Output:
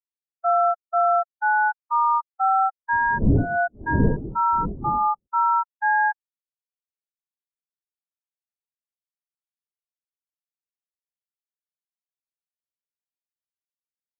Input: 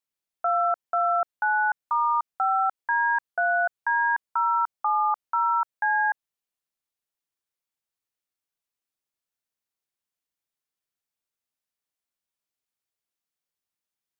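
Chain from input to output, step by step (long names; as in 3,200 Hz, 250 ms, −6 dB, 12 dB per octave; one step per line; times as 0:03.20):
0:02.92–0:05.26: wind on the microphone 490 Hz −25 dBFS
low-shelf EQ 500 Hz +6 dB
downward compressor 3 to 1, threshold −18 dBFS, peak gain reduction 9 dB
every bin expanded away from the loudest bin 2.5 to 1
level +1 dB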